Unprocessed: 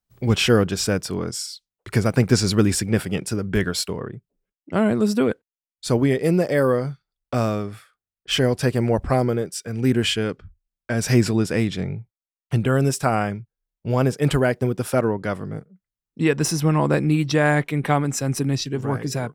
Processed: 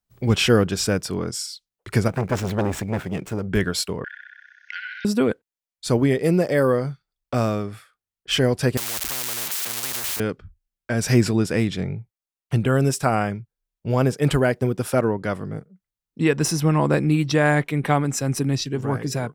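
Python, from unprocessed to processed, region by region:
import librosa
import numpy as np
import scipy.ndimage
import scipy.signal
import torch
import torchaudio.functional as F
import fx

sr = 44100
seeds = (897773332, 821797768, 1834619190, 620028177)

y = fx.chain(x, sr, fx.median_filter(points=9),
    fx.transformer_sat(knee_hz=790.0), at=(2.08, 3.48))
y = fx.chain(y, sr, fx.brickwall_bandpass(low_hz=1400.0, high_hz=6600.0),
    fx.room_flutter(wall_m=10.8, rt60_s=1.0),
    fx.band_squash(depth_pct=100), at=(4.04, 5.05))
y = fx.chain(y, sr, fx.crossing_spikes(level_db=-17.5),
    fx.spectral_comp(ratio=10.0), at=(8.77, 10.2))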